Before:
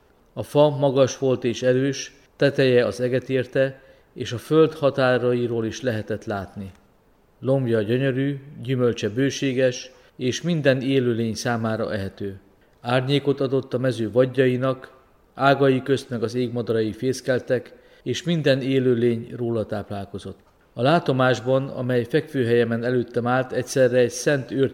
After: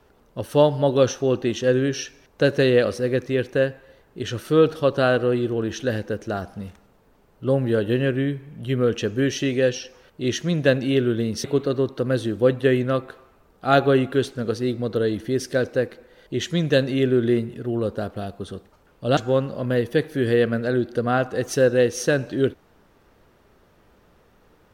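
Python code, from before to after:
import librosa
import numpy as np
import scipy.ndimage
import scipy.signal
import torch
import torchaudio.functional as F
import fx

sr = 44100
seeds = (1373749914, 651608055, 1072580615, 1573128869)

y = fx.edit(x, sr, fx.cut(start_s=11.44, length_s=1.74),
    fx.cut(start_s=20.91, length_s=0.45), tone=tone)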